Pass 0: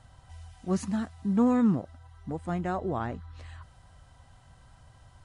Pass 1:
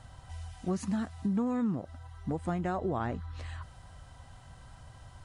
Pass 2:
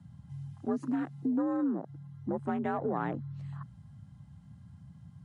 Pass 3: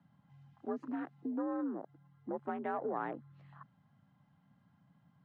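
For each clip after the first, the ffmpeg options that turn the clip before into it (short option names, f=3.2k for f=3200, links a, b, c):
-af "acompressor=threshold=-32dB:ratio=6,volume=4dB"
-af "afwtdn=0.00631,afreqshift=57"
-af "highpass=320,lowpass=2.7k,volume=-3dB"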